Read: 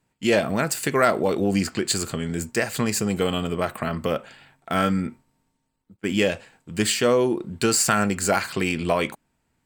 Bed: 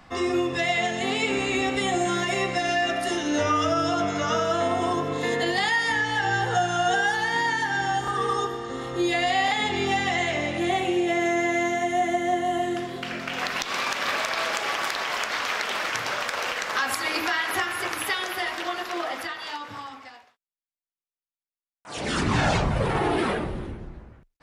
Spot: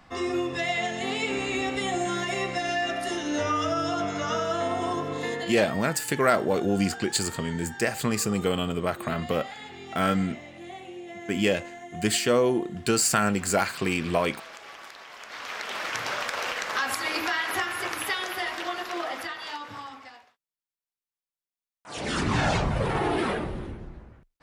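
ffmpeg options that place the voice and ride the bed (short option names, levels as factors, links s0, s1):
-filter_complex "[0:a]adelay=5250,volume=0.75[s0];[1:a]volume=3.76,afade=t=out:st=5.21:d=0.46:silence=0.211349,afade=t=in:st=15.19:d=0.87:silence=0.177828[s1];[s0][s1]amix=inputs=2:normalize=0"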